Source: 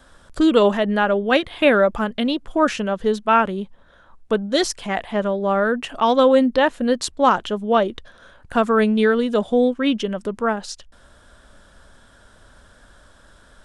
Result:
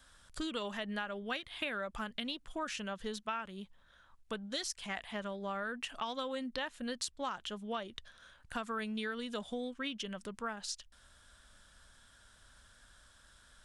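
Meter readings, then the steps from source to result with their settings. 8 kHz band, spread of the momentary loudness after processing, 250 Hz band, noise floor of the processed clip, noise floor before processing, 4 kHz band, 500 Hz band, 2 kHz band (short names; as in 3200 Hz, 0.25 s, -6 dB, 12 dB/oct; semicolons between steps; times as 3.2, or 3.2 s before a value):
-10.5 dB, 7 LU, -21.5 dB, -64 dBFS, -51 dBFS, -12.0 dB, -24.0 dB, -16.0 dB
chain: passive tone stack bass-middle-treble 5-5-5; compressor 6:1, threshold -36 dBFS, peak gain reduction 11.5 dB; gain +1 dB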